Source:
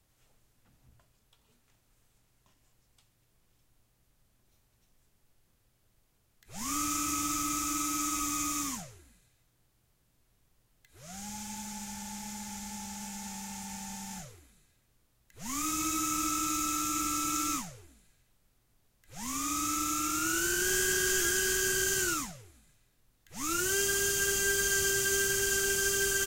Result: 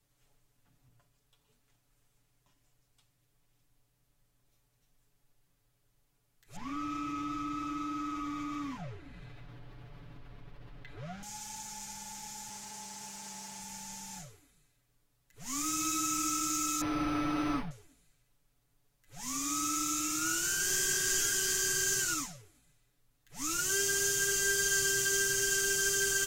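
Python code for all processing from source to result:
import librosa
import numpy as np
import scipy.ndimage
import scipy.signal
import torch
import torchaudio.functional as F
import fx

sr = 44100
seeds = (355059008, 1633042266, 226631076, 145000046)

y = fx.chain(x, sr, fx.air_absorb(metres=350.0),
    fx.env_flatten(amount_pct=70), at=(6.56, 11.23))
y = fx.chain(y, sr, fx.highpass(hz=79.0, slope=6),
    fx.doppler_dist(depth_ms=0.15), at=(12.49, 13.6))
y = fx.chain(y, sr, fx.low_shelf(hz=400.0, db=10.5),
    fx.resample_linear(factor=6), at=(16.81, 17.71))
y = y + 0.81 * np.pad(y, (int(7.0 * sr / 1000.0), 0))[:len(y)]
y = fx.dynamic_eq(y, sr, hz=5800.0, q=1.0, threshold_db=-45.0, ratio=4.0, max_db=5)
y = y * 10.0 ** (-6.0 / 20.0)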